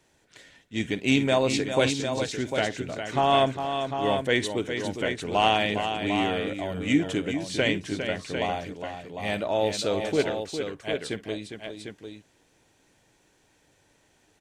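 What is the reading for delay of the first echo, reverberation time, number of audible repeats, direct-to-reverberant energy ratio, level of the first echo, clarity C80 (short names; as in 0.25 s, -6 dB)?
53 ms, none, 3, none, -17.5 dB, none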